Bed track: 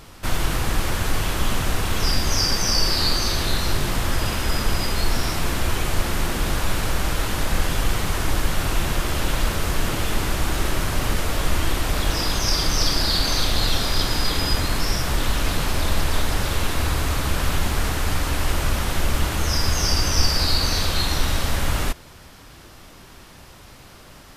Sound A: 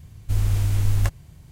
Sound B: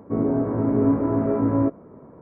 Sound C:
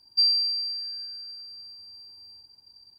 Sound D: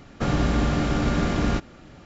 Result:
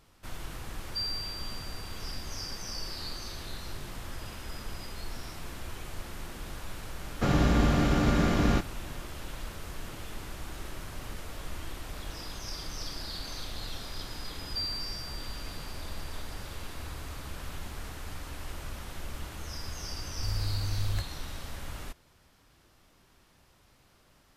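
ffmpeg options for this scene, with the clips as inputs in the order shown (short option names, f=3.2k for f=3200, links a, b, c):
-filter_complex "[3:a]asplit=2[a][b];[0:a]volume=-18dB[c];[b]tiltshelf=f=970:g=8.5[d];[a]atrim=end=2.98,asetpts=PTS-STARTPTS,volume=-13dB,afade=t=in:d=0.004:c=hsin,afade=t=out:st=2.976:d=0.004:c=hsin,adelay=780[e];[4:a]atrim=end=2.05,asetpts=PTS-STARTPTS,volume=-2dB,afade=t=in:d=0.004:c=hsin,afade=t=out:st=2.046:d=0.004:c=hsin,adelay=7010[f];[d]atrim=end=2.98,asetpts=PTS-STARTPTS,volume=-5.5dB,afade=t=in:d=0.004:c=hsin,afade=t=out:st=2.976:d=0.004:c=hsin,adelay=14380[g];[1:a]atrim=end=1.51,asetpts=PTS-STARTPTS,volume=-11dB,afade=t=in:d=0.004:c=hsin,afade=t=out:st=1.506:d=0.004:c=hsin,adelay=19930[h];[c][e][f][g][h]amix=inputs=5:normalize=0"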